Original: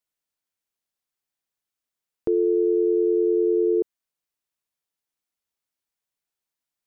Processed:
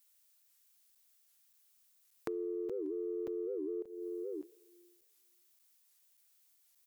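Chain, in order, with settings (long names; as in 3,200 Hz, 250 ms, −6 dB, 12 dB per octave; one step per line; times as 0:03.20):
single-tap delay 596 ms −16 dB
four-comb reverb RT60 1.4 s, combs from 33 ms, DRR 15.5 dB
downward compressor 6 to 1, threshold −35 dBFS, peak gain reduction 16 dB
high-pass filter 120 Hz 12 dB per octave
spectral tilt +4 dB per octave
soft clipping −26.5 dBFS, distortion −30 dB
regular buffer underruns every 0.58 s, samples 256, zero, from 0:00.95
wow of a warped record 78 rpm, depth 250 cents
level +3.5 dB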